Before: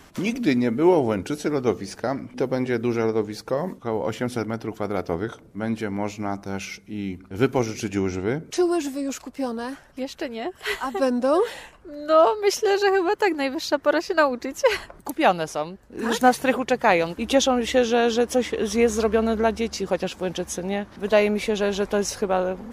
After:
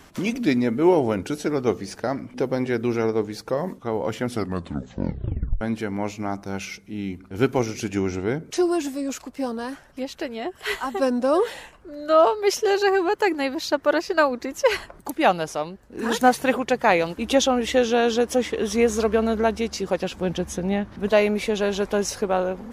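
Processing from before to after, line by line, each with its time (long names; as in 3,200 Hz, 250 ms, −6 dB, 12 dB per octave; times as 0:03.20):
0:04.30: tape stop 1.31 s
0:20.11–0:21.08: bass and treble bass +7 dB, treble −4 dB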